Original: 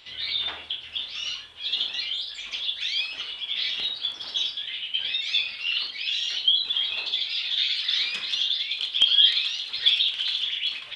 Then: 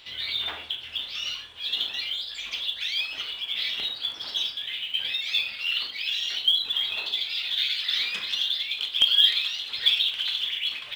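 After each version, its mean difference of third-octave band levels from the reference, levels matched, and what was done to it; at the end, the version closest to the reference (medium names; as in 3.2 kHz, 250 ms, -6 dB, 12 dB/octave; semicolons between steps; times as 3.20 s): 3.0 dB: dynamic bell 4.7 kHz, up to -4 dB, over -34 dBFS, Q 1.1; in parallel at -5 dB: short-mantissa float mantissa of 2-bit; on the sum: trim -2.5 dB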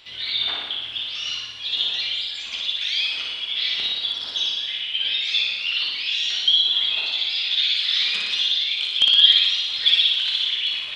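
2.0 dB: flutter echo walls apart 10.1 m, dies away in 1.1 s; trim +1.5 dB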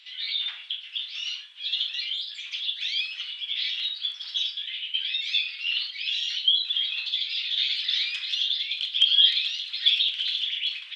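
4.5 dB: Chebyshev high-pass 2.4 kHz, order 2; treble shelf 7.3 kHz -10.5 dB; trim +1 dB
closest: second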